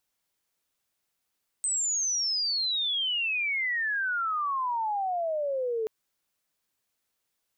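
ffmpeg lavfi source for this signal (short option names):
-f lavfi -i "aevalsrc='pow(10,(-25-1.5*t/4.23)/20)*sin(2*PI*8300*4.23/log(430/8300)*(exp(log(430/8300)*t/4.23)-1))':d=4.23:s=44100"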